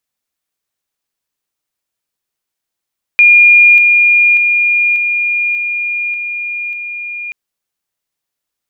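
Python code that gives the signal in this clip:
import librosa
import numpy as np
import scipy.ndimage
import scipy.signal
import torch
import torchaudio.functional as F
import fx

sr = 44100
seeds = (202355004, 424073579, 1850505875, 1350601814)

y = fx.level_ladder(sr, hz=2420.0, from_db=-2.5, step_db=-3.0, steps=7, dwell_s=0.59, gap_s=0.0)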